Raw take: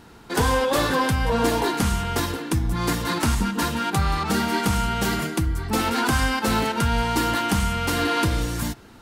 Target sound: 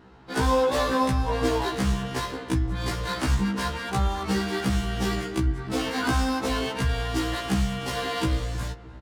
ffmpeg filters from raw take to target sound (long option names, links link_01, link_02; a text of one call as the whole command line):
ffmpeg -i in.wav -filter_complex "[0:a]asplit=2[link_01][link_02];[link_02]adelay=308,lowpass=frequency=2600:poles=1,volume=-16dB,asplit=2[link_03][link_04];[link_04]adelay=308,lowpass=frequency=2600:poles=1,volume=0.46,asplit=2[link_05][link_06];[link_06]adelay=308,lowpass=frequency=2600:poles=1,volume=0.46,asplit=2[link_07][link_08];[link_08]adelay=308,lowpass=frequency=2600:poles=1,volume=0.46[link_09];[link_01][link_03][link_05][link_07][link_09]amix=inputs=5:normalize=0,adynamicsmooth=sensitivity=8:basefreq=3200,afftfilt=real='re*1.73*eq(mod(b,3),0)':imag='im*1.73*eq(mod(b,3),0)':win_size=2048:overlap=0.75,volume=-1dB" out.wav